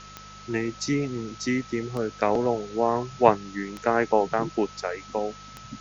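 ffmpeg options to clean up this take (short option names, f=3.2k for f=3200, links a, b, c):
-af "adeclick=t=4,bandreject=f=50.5:t=h:w=4,bandreject=f=101:t=h:w=4,bandreject=f=151.5:t=h:w=4,bandreject=f=202:t=h:w=4,bandreject=f=1.3k:w=30,afwtdn=0.0056"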